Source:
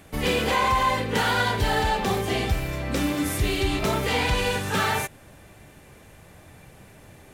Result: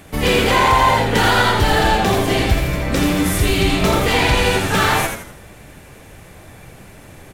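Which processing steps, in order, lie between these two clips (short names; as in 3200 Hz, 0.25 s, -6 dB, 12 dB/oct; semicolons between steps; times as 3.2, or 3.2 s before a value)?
frequency-shifting echo 83 ms, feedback 41%, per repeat -110 Hz, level -5 dB; gain +7 dB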